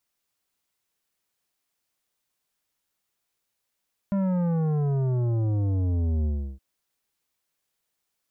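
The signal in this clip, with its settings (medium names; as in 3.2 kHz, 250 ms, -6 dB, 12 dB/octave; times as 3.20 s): sub drop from 200 Hz, over 2.47 s, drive 11 dB, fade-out 0.34 s, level -23 dB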